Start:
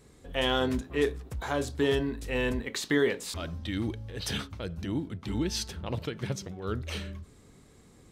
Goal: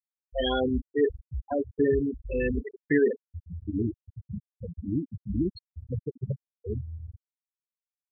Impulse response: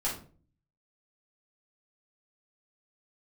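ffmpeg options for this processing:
-filter_complex "[0:a]asplit=2[s0][s1];[s1]adelay=768,lowpass=f=3500:p=1,volume=0.2,asplit=2[s2][s3];[s3]adelay=768,lowpass=f=3500:p=1,volume=0.54,asplit=2[s4][s5];[s5]adelay=768,lowpass=f=3500:p=1,volume=0.54,asplit=2[s6][s7];[s7]adelay=768,lowpass=f=3500:p=1,volume=0.54,asplit=2[s8][s9];[s9]adelay=768,lowpass=f=3500:p=1,volume=0.54[s10];[s0][s2][s4][s6][s8][s10]amix=inputs=6:normalize=0,afftfilt=real='re*gte(hypot(re,im),0.141)':imag='im*gte(hypot(re,im),0.141)':win_size=1024:overlap=0.75,volume=1.5"

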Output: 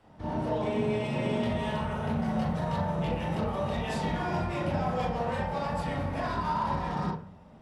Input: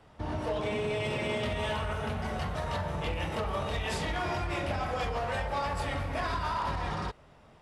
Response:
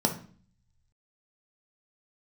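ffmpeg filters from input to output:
-filter_complex "[0:a]asplit=2[s0][s1];[1:a]atrim=start_sample=2205,lowpass=3500,adelay=38[s2];[s1][s2]afir=irnorm=-1:irlink=0,volume=0.422[s3];[s0][s3]amix=inputs=2:normalize=0,volume=0.562"

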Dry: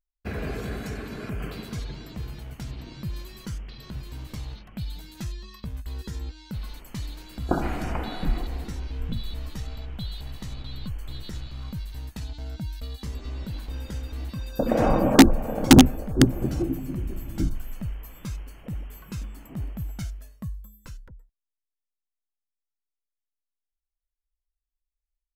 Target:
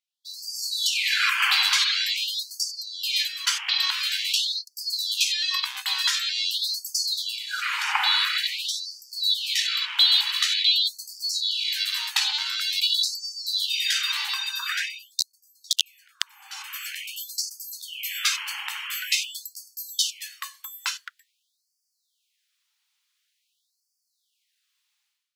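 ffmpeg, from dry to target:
-filter_complex "[0:a]asplit=3[s0][s1][s2];[s0]afade=t=out:st=2.73:d=0.02[s3];[s1]agate=range=0.316:threshold=0.0141:ratio=16:detection=peak,afade=t=in:st=2.73:d=0.02,afade=t=out:st=3.65:d=0.02[s4];[s2]afade=t=in:st=3.65:d=0.02[s5];[s3][s4][s5]amix=inputs=3:normalize=0,equalizer=f=3400:w=0.55:g=14,dynaudnorm=f=100:g=7:m=6.31,afftfilt=real='re*gte(b*sr/1024,750*pow(4500/750,0.5+0.5*sin(2*PI*0.47*pts/sr)))':imag='im*gte(b*sr/1024,750*pow(4500/750,0.5+0.5*sin(2*PI*0.47*pts/sr)))':win_size=1024:overlap=0.75,volume=0.841"

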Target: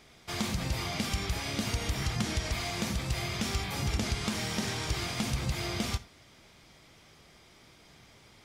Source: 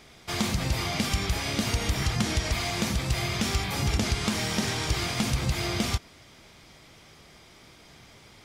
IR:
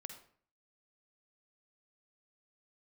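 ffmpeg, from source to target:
-filter_complex "[0:a]asplit=2[s0][s1];[1:a]atrim=start_sample=2205,atrim=end_sample=4410[s2];[s1][s2]afir=irnorm=-1:irlink=0,volume=0.944[s3];[s0][s3]amix=inputs=2:normalize=0,volume=0.376"

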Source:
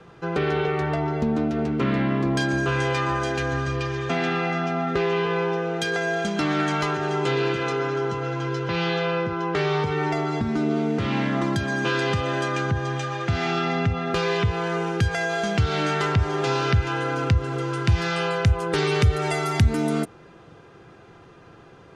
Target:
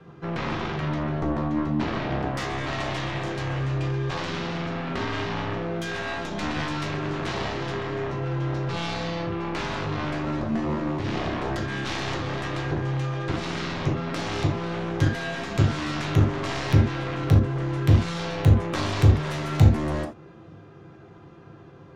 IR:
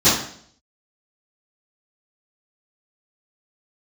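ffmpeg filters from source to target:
-filter_complex "[0:a]aemphasis=mode=reproduction:type=cd,aeval=exprs='0.376*(cos(1*acos(clip(val(0)/0.376,-1,1)))-cos(1*PI/2))+0.0841*(cos(3*acos(clip(val(0)/0.376,-1,1)))-cos(3*PI/2))+0.0668*(cos(7*acos(clip(val(0)/0.376,-1,1)))-cos(7*PI/2))+0.0133*(cos(8*acos(clip(val(0)/0.376,-1,1)))-cos(8*PI/2))':c=same,asplit=2[s0][s1];[1:a]atrim=start_sample=2205,afade=t=out:st=0.14:d=0.01,atrim=end_sample=6615,lowshelf=f=430:g=3.5[s2];[s1][s2]afir=irnorm=-1:irlink=0,volume=0.0708[s3];[s0][s3]amix=inputs=2:normalize=0,volume=0.596"

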